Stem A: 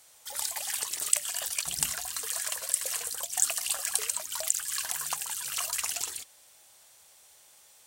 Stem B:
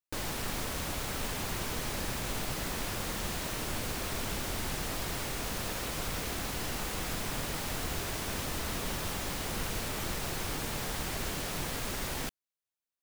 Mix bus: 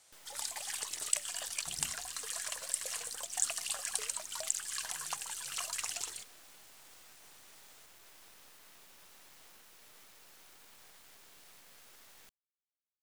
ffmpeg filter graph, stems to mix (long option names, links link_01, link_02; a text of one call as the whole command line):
ffmpeg -i stem1.wav -i stem2.wav -filter_complex "[0:a]lowpass=9600,volume=-5dB[link_01];[1:a]acompressor=threshold=-38dB:ratio=6,highpass=frequency=970:poles=1,acrusher=bits=5:dc=4:mix=0:aa=0.000001,volume=-10.5dB[link_02];[link_01][link_02]amix=inputs=2:normalize=0" out.wav